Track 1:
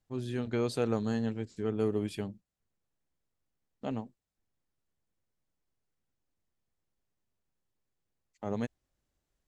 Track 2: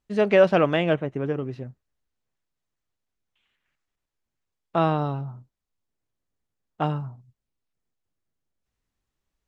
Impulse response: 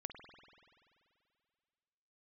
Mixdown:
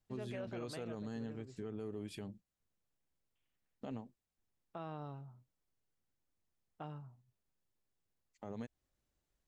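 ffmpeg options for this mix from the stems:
-filter_complex "[0:a]volume=0.708[s0];[1:a]volume=0.112[s1];[s0][s1]amix=inputs=2:normalize=0,alimiter=level_in=3.35:limit=0.0631:level=0:latency=1:release=153,volume=0.299"

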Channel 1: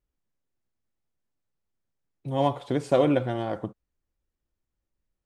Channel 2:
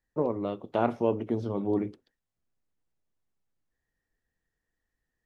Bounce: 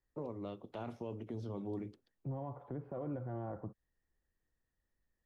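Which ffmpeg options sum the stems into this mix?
-filter_complex "[0:a]lowpass=f=1400:w=0.5412,lowpass=f=1400:w=1.3066,alimiter=limit=0.126:level=0:latency=1:release=302,volume=0.668[s0];[1:a]volume=0.473[s1];[s0][s1]amix=inputs=2:normalize=0,acrossover=split=150|3000[s2][s3][s4];[s3]acompressor=threshold=0.00631:ratio=2[s5];[s2][s5][s4]amix=inputs=3:normalize=0,alimiter=level_in=2.66:limit=0.0631:level=0:latency=1:release=15,volume=0.376"

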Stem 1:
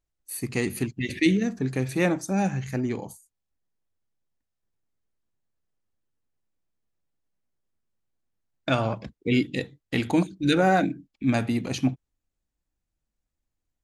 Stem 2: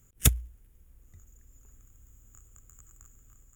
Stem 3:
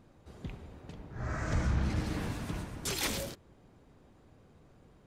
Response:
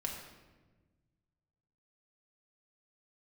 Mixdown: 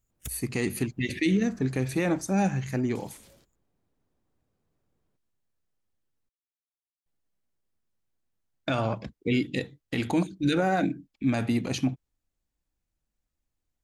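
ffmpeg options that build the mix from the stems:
-filter_complex "[0:a]volume=1,asplit=3[s0][s1][s2];[s0]atrim=end=6.29,asetpts=PTS-STARTPTS,afade=t=out:st=6.286:d=0.004:c=hsin[s3];[s1]atrim=start=6.29:end=7.06,asetpts=PTS-STARTPTS,volume=0[s4];[s2]atrim=start=7.06,asetpts=PTS-STARTPTS,afade=t=in:d=0.004:c=hsin[s5];[s3][s4][s5]concat=n=3:v=0:a=1[s6];[1:a]volume=0.126[s7];[2:a]acompressor=threshold=0.0282:ratio=6,adelay=100,volume=0.112[s8];[s6][s7][s8]amix=inputs=3:normalize=0,alimiter=limit=0.168:level=0:latency=1:release=72"

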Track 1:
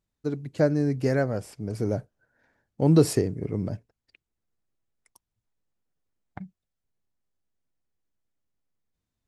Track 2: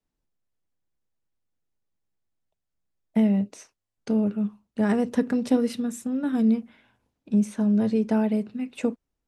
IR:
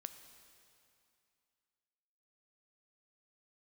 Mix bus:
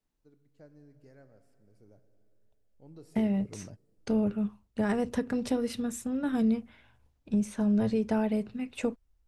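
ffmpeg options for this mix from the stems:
-filter_complex "[0:a]volume=0.15,asplit=2[s0][s1];[s1]volume=0.237[s2];[1:a]asubboost=boost=7.5:cutoff=78,volume=0.944,asplit=2[s3][s4];[s4]apad=whole_len=408880[s5];[s0][s5]sidechaingate=range=0.0224:threshold=0.00112:ratio=16:detection=peak[s6];[2:a]atrim=start_sample=2205[s7];[s2][s7]afir=irnorm=-1:irlink=0[s8];[s6][s3][s8]amix=inputs=3:normalize=0,alimiter=limit=0.112:level=0:latency=1:release=297"

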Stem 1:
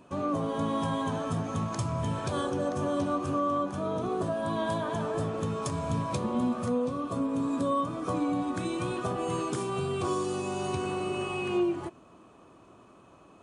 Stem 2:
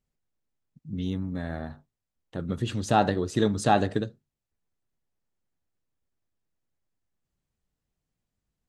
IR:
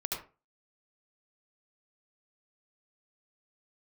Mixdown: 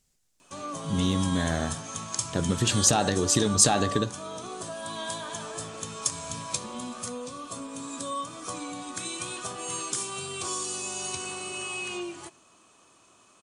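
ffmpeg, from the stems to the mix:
-filter_complex "[0:a]tiltshelf=f=880:g=-5.5,adelay=400,volume=0.473,asplit=2[s0][s1];[s1]volume=0.0708[s2];[1:a]acontrast=38,alimiter=limit=0.355:level=0:latency=1,acompressor=threshold=0.0794:ratio=6,volume=1.12[s3];[2:a]atrim=start_sample=2205[s4];[s2][s4]afir=irnorm=-1:irlink=0[s5];[s0][s3][s5]amix=inputs=3:normalize=0,equalizer=f=7400:w=0.52:g=15"

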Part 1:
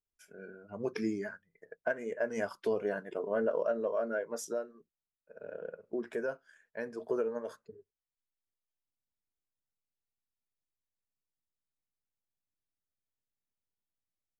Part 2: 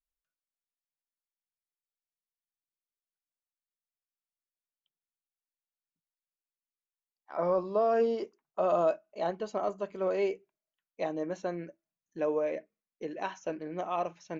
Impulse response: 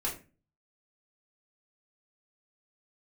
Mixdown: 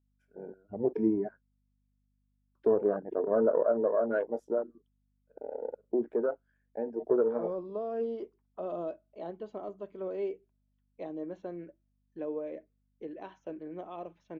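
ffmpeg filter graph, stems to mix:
-filter_complex "[0:a]afwtdn=0.0112,volume=1.41,asplit=3[s0][s1][s2];[s0]atrim=end=1.41,asetpts=PTS-STARTPTS,afade=t=out:st=1.406:d=0.004:c=hsin[s3];[s1]atrim=start=1.41:end=2.55,asetpts=PTS-STARTPTS,volume=0[s4];[s2]atrim=start=2.55,asetpts=PTS-STARTPTS,afade=t=in:d=0.004:c=hsin[s5];[s3][s4][s5]concat=n=3:v=0:a=1[s6];[1:a]equalizer=f=3400:w=6:g=9,acrossover=split=500|3000[s7][s8][s9];[s8]acompressor=threshold=0.00631:ratio=2[s10];[s7][s10][s9]amix=inputs=3:normalize=0,aeval=exprs='val(0)+0.000398*(sin(2*PI*50*n/s)+sin(2*PI*2*50*n/s)/2+sin(2*PI*3*50*n/s)/3+sin(2*PI*4*50*n/s)/4+sin(2*PI*5*50*n/s)/5)':c=same,volume=0.473[s11];[s6][s11]amix=inputs=2:normalize=0,firequalizer=gain_entry='entry(180,0);entry(300,5);entry(530,2);entry(5800,-17)':delay=0.05:min_phase=1"

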